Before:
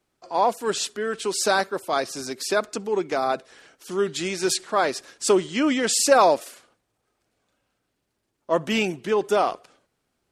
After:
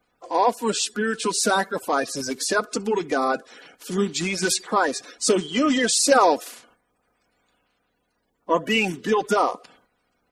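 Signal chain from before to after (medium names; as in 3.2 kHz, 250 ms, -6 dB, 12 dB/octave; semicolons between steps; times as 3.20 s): coarse spectral quantiser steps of 30 dB; comb 4.1 ms, depth 35%; in parallel at +1.5 dB: compression, threshold -27 dBFS, peak gain reduction 14.5 dB; on the sum: trim -2 dB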